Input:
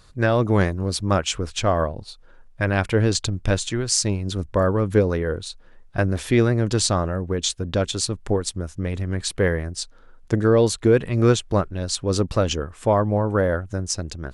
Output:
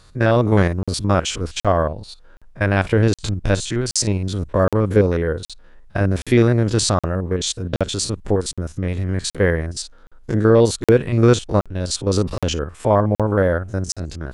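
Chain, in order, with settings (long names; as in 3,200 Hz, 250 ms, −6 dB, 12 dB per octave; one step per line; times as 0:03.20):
spectrum averaged block by block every 50 ms
regular buffer underruns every 0.77 s, samples 2,048, zero, from 0:00.83
level +4 dB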